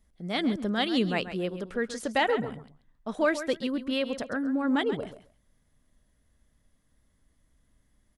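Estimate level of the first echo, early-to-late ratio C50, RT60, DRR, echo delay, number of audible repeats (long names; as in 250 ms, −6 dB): −12.0 dB, no reverb audible, no reverb audible, no reverb audible, 134 ms, 2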